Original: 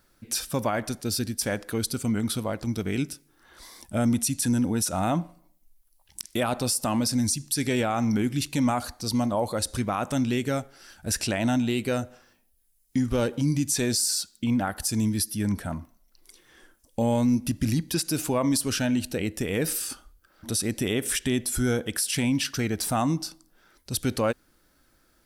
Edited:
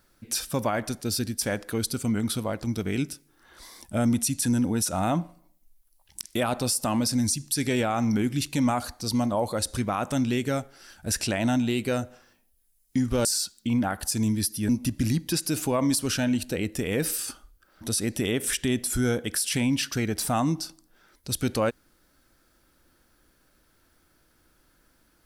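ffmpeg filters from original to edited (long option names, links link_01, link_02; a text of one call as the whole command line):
ffmpeg -i in.wav -filter_complex "[0:a]asplit=3[link_01][link_02][link_03];[link_01]atrim=end=13.252[link_04];[link_02]atrim=start=14.018:end=15.462[link_05];[link_03]atrim=start=17.308[link_06];[link_04][link_05]acrossfade=duration=0.004:curve1=hsin:curve2=hsin[link_07];[link_07][link_06]acrossfade=duration=0.004:curve1=hsin:curve2=hsin" out.wav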